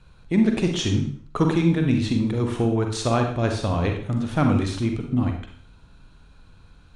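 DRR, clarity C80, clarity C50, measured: 3.0 dB, 9.5 dB, 5.0 dB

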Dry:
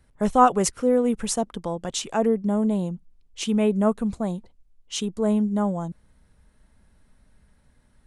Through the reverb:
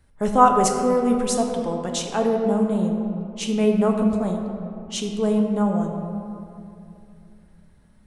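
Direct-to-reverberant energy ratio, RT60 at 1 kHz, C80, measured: 2.0 dB, 2.5 s, 5.0 dB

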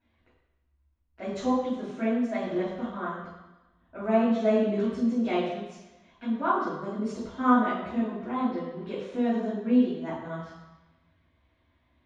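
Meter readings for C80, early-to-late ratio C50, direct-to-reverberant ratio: 4.0 dB, 1.0 dB, −10.5 dB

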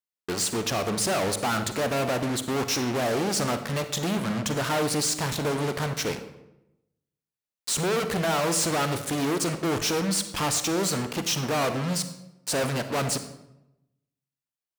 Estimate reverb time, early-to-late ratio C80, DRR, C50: 0.90 s, 12.5 dB, 9.0 dB, 10.0 dB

